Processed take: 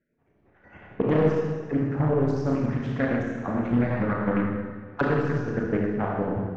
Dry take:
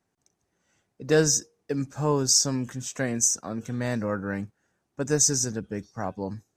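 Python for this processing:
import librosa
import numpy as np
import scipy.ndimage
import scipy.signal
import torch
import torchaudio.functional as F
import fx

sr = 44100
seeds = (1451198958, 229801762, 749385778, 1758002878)

y = fx.spec_dropout(x, sr, seeds[0], share_pct=25)
y = fx.recorder_agc(y, sr, target_db=-14.5, rise_db_per_s=31.0, max_gain_db=30)
y = scipy.signal.sosfilt(scipy.signal.butter(4, 2200.0, 'lowpass', fs=sr, output='sos'), y)
y = 10.0 ** (-14.5 / 20.0) * np.tanh(y / 10.0 ** (-14.5 / 20.0))
y = fx.chopper(y, sr, hz=11.0, depth_pct=65, duty_pct=50)
y = fx.rev_schroeder(y, sr, rt60_s=1.6, comb_ms=26, drr_db=-3.0)
y = fx.doppler_dist(y, sr, depth_ms=0.38)
y = F.gain(torch.from_numpy(y), 1.0).numpy()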